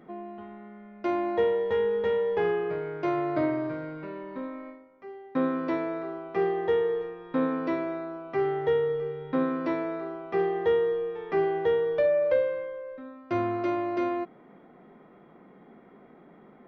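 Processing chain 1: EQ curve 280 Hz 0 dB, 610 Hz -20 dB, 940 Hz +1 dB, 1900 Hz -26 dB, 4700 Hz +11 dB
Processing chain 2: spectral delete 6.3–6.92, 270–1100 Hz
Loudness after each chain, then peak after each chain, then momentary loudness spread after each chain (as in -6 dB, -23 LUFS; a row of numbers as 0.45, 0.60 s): -36.0, -28.5 LUFS; -19.0, -14.0 dBFS; 16, 15 LU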